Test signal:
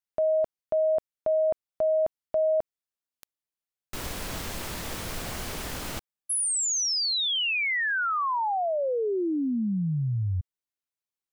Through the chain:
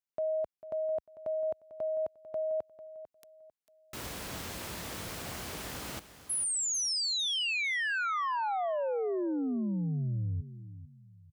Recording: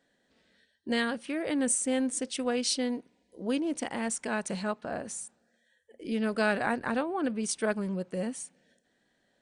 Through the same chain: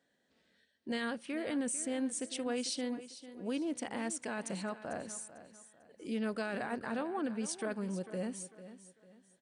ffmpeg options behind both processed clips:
-af "highpass=64,alimiter=limit=-23dB:level=0:latency=1:release=18,aecho=1:1:447|894|1341:0.2|0.0658|0.0217,volume=-5dB"

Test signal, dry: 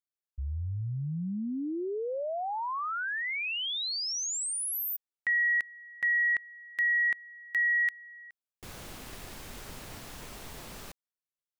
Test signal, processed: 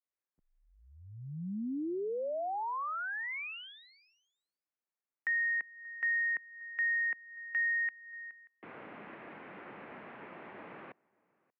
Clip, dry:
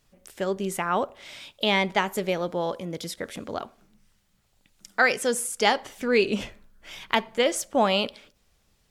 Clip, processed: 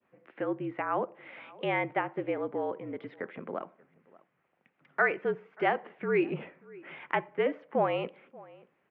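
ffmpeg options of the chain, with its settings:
-filter_complex "[0:a]adynamicequalizer=threshold=0.0126:dfrequency=1800:dqfactor=0.79:tfrequency=1800:tqfactor=0.79:attack=5:release=100:ratio=0.375:range=2.5:mode=cutabove:tftype=bell,highpass=f=250:t=q:w=0.5412,highpass=f=250:t=q:w=1.307,lowpass=f=2.4k:t=q:w=0.5176,lowpass=f=2.4k:t=q:w=0.7071,lowpass=f=2.4k:t=q:w=1.932,afreqshift=-51,asplit=2[a][b];[b]adelay=583.1,volume=-27dB,highshelf=f=4k:g=-13.1[c];[a][c]amix=inputs=2:normalize=0,asplit=2[d][e];[e]acompressor=threshold=-39dB:ratio=6:attack=0.9:release=294:knee=6:detection=rms,volume=1dB[f];[d][f]amix=inputs=2:normalize=0,volume=-5.5dB"

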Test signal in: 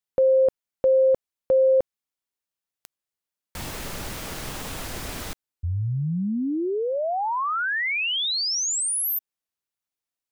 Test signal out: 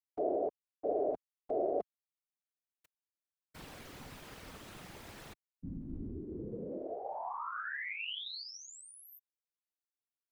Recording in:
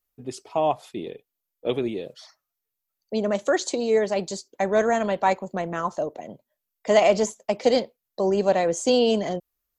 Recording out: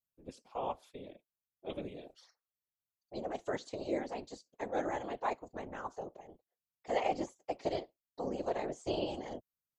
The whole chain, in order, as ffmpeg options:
-filter_complex "[0:a]aeval=exprs='val(0)*sin(2*PI*110*n/s)':c=same,equalizer=f=95:w=3:g=-14.5,acrossover=split=4200[a][b];[b]acompressor=threshold=-44dB:ratio=4:attack=1:release=60[c];[a][c]amix=inputs=2:normalize=0,afftfilt=real='hypot(re,im)*cos(2*PI*random(0))':imag='hypot(re,im)*sin(2*PI*random(1))':win_size=512:overlap=0.75,volume=-6dB"

